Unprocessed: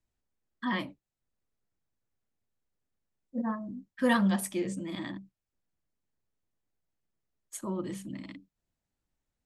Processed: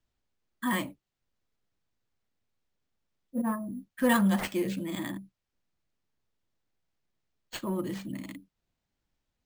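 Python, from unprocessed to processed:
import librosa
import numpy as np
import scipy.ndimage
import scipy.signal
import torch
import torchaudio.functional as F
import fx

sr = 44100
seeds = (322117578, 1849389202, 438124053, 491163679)

p1 = np.clip(x, -10.0 ** (-29.0 / 20.0), 10.0 ** (-29.0 / 20.0))
p2 = x + (p1 * librosa.db_to_amplitude(-9.0))
y = np.repeat(p2[::4], 4)[:len(p2)]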